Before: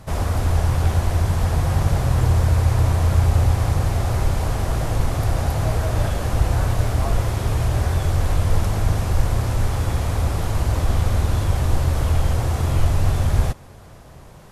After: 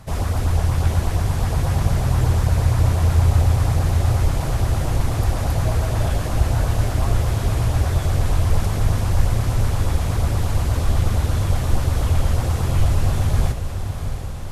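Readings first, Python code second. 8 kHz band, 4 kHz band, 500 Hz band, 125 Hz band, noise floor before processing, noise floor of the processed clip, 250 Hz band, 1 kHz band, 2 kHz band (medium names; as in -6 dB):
+1.0 dB, +0.5 dB, -1.0 dB, +0.5 dB, -42 dBFS, -25 dBFS, +0.5 dB, -1.0 dB, -0.5 dB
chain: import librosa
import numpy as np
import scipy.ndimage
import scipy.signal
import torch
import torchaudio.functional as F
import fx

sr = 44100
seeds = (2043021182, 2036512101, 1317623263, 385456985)

y = fx.filter_lfo_notch(x, sr, shape='saw_up', hz=8.4, low_hz=290.0, high_hz=2400.0, q=1.8)
y = fx.echo_diffused(y, sr, ms=675, feedback_pct=68, wet_db=-9)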